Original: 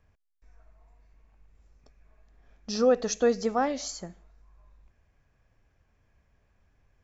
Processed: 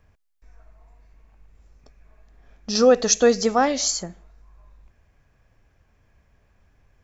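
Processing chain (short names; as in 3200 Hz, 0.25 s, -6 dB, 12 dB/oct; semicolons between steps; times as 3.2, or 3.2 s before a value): 2.75–4.03 high shelf 2900 Hz +9 dB; gain +6.5 dB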